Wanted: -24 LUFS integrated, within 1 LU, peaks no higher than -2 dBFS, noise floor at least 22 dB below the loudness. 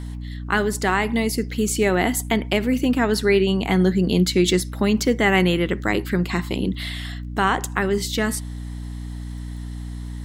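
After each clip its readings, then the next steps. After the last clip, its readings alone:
tick rate 18 per s; hum 60 Hz; highest harmonic 300 Hz; hum level -29 dBFS; loudness -21.0 LUFS; peak level -6.0 dBFS; loudness target -24.0 LUFS
-> de-click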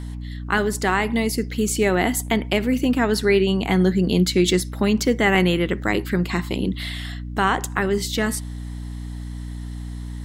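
tick rate 0.20 per s; hum 60 Hz; highest harmonic 300 Hz; hum level -29 dBFS
-> hum notches 60/120/180/240/300 Hz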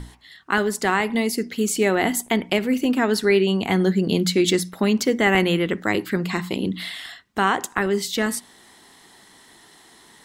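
hum not found; loudness -21.5 LUFS; peak level -6.0 dBFS; loudness target -24.0 LUFS
-> trim -2.5 dB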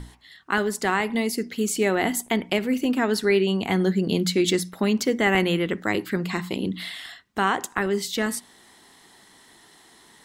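loudness -24.0 LUFS; peak level -8.5 dBFS; noise floor -54 dBFS

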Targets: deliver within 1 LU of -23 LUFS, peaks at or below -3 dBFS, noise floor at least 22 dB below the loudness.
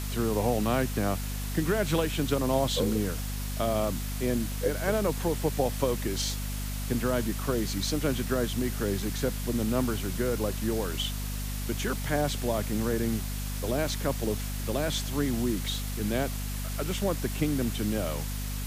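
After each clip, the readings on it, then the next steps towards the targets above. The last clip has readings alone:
hum 50 Hz; highest harmonic 250 Hz; hum level -31 dBFS; noise floor -33 dBFS; noise floor target -52 dBFS; loudness -29.5 LUFS; peak level -12.5 dBFS; loudness target -23.0 LUFS
-> de-hum 50 Hz, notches 5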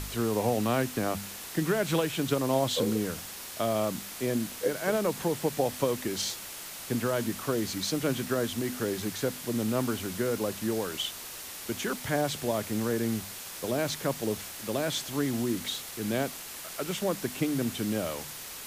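hum not found; noise floor -42 dBFS; noise floor target -53 dBFS
-> noise reduction 11 dB, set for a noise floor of -42 dBFS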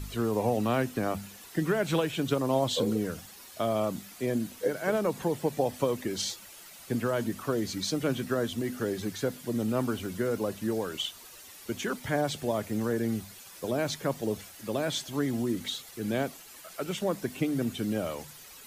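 noise floor -49 dBFS; noise floor target -53 dBFS
-> noise reduction 6 dB, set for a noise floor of -49 dBFS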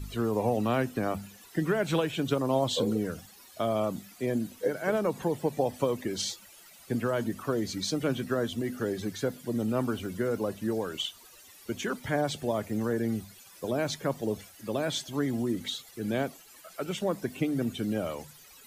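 noise floor -54 dBFS; loudness -31.0 LUFS; peak level -13.5 dBFS; loudness target -23.0 LUFS
-> trim +8 dB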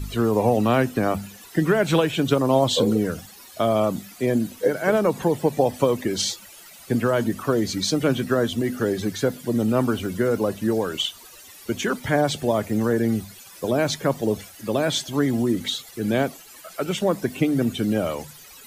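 loudness -23.0 LUFS; peak level -5.5 dBFS; noise floor -46 dBFS

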